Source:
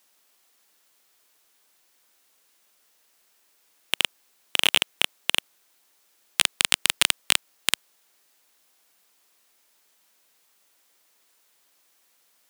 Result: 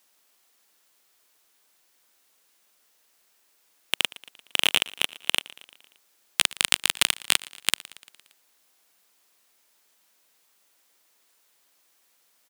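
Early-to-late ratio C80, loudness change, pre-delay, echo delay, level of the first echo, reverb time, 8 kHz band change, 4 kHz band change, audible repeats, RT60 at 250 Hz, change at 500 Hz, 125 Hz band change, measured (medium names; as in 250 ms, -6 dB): no reverb, -1.0 dB, no reverb, 115 ms, -20.5 dB, no reverb, -1.0 dB, -1.0 dB, 4, no reverb, -1.0 dB, -1.0 dB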